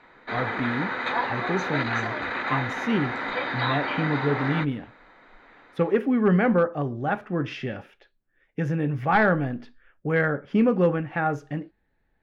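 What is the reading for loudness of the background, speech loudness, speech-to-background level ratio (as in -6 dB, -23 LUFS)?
-28.0 LUFS, -26.0 LUFS, 2.0 dB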